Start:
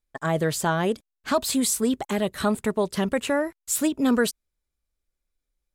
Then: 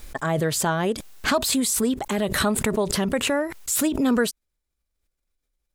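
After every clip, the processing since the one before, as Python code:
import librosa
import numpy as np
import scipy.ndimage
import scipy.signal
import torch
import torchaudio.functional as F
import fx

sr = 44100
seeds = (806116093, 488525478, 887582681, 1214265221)

y = fx.pre_swell(x, sr, db_per_s=39.0)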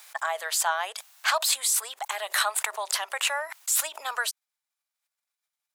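y = scipy.signal.sosfilt(scipy.signal.butter(6, 720.0, 'highpass', fs=sr, output='sos'), x)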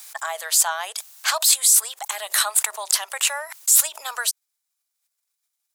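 y = fx.bass_treble(x, sr, bass_db=-8, treble_db=10)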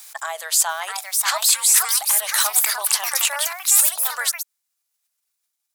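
y = fx.echo_pitch(x, sr, ms=691, semitones=3, count=2, db_per_echo=-3.0)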